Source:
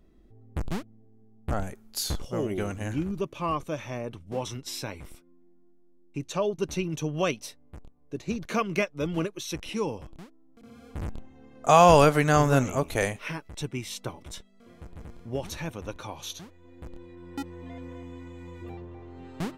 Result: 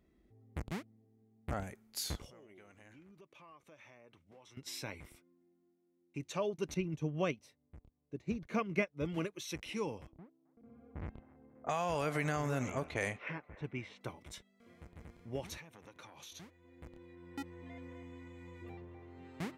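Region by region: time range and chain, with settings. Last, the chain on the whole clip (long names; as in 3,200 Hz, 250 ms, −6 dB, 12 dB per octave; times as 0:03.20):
0:02.30–0:04.57: high-pass filter 1,200 Hz 6 dB per octave + spectral tilt −2.5 dB per octave + downward compressor 4 to 1, threshold −49 dBFS
0:06.74–0:09.05: spectral tilt −2 dB per octave + expander for the loud parts, over −38 dBFS
0:10.12–0:14.01: downward compressor 16 to 1, threshold −21 dBFS + low-pass that shuts in the quiet parts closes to 640 Hz, open at −23 dBFS + delay with a band-pass on its return 267 ms, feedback 55%, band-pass 930 Hz, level −17.5 dB
0:15.57–0:16.32: high-pass filter 130 Hz + downward compressor 8 to 1, threshold −40 dBFS + saturating transformer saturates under 680 Hz
whole clip: high-pass filter 53 Hz; parametric band 2,100 Hz +7 dB 0.47 octaves; level −8.5 dB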